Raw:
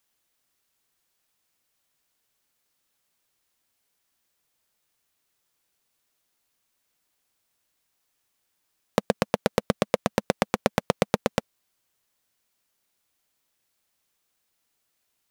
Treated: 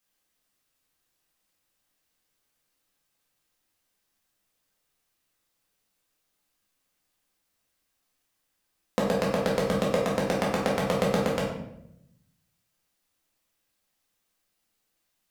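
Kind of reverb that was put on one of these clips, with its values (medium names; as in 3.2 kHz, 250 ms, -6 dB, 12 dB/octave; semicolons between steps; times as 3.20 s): simulated room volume 210 m³, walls mixed, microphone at 2 m; trim -7 dB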